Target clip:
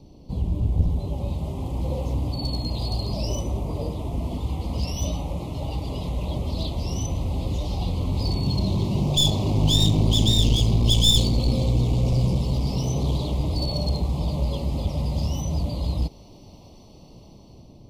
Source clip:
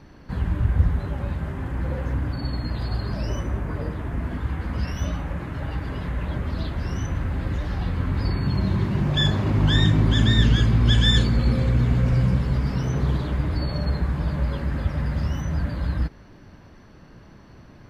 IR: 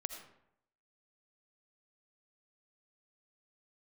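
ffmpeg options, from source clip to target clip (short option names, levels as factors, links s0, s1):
-filter_complex "[0:a]acrossover=split=670[s0][s1];[s1]dynaudnorm=f=490:g=5:m=2.82[s2];[s0][s2]amix=inputs=2:normalize=0,aeval=exprs='clip(val(0),-1,0.106)':c=same,asuperstop=centerf=1600:order=4:qfactor=0.61"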